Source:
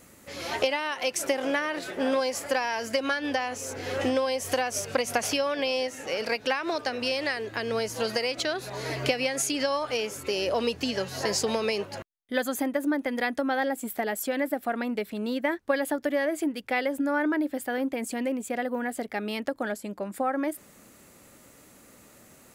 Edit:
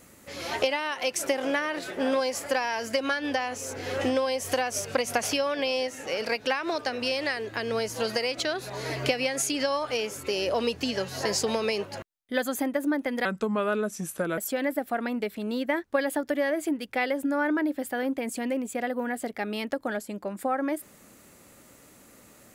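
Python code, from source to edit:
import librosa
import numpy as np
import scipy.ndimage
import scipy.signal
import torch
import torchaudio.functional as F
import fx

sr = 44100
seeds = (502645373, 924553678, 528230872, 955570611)

y = fx.edit(x, sr, fx.speed_span(start_s=13.25, length_s=0.88, speed=0.78), tone=tone)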